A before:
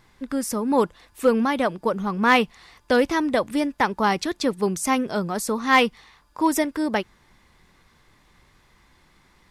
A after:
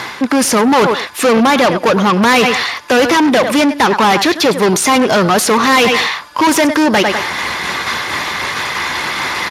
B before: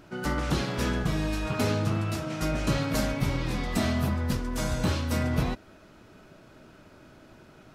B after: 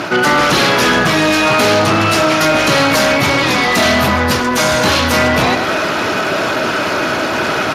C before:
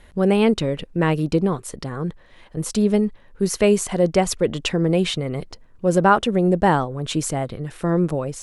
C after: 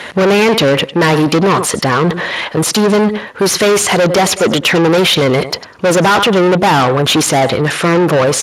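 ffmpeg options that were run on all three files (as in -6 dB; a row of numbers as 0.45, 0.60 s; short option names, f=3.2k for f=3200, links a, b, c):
-filter_complex "[0:a]asplit=2[a][b];[b]aecho=0:1:100|200:0.075|0.0142[c];[a][c]amix=inputs=2:normalize=0,asubboost=boost=3:cutoff=75,areverse,acompressor=mode=upward:threshold=-22dB:ratio=2.5,areverse,asplit=2[d][e];[e]highpass=f=720:p=1,volume=33dB,asoftclip=type=tanh:threshold=-3dB[f];[d][f]amix=inputs=2:normalize=0,lowpass=f=6.3k:p=1,volume=-6dB,acontrast=80,volume=-4.5dB" -ar 32000 -c:a libspeex -b:a 36k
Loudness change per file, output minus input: +10.5, +16.5, +9.5 LU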